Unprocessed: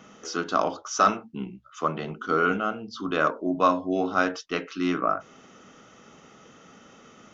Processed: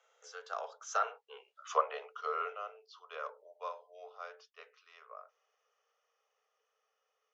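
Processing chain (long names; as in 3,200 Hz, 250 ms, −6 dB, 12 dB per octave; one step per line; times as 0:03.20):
source passing by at 0:01.65, 16 m/s, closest 3.2 metres
treble cut that deepens with the level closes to 2,600 Hz, closed at −26.5 dBFS
Chebyshev high-pass filter 430 Hz, order 8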